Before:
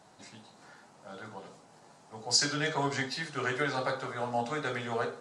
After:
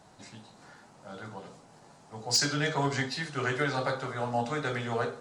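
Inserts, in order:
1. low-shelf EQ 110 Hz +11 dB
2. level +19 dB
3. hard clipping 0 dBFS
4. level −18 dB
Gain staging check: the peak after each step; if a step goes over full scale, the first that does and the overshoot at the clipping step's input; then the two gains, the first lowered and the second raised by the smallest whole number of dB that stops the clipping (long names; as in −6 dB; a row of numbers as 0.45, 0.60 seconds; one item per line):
−11.0, +8.0, 0.0, −18.0 dBFS
step 2, 8.0 dB
step 2 +11 dB, step 4 −10 dB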